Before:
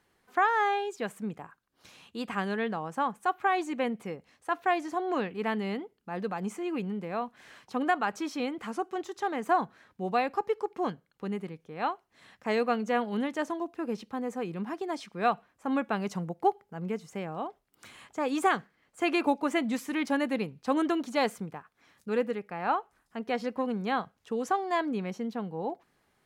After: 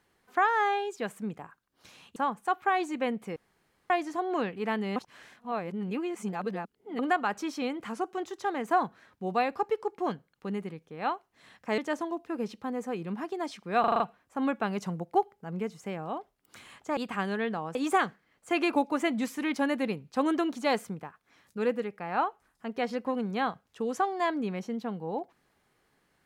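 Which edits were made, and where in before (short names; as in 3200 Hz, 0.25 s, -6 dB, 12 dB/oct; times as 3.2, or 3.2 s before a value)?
2.16–2.94 move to 18.26
4.14–4.68 room tone
5.74–7.77 reverse
12.56–13.27 cut
15.29 stutter 0.04 s, 6 plays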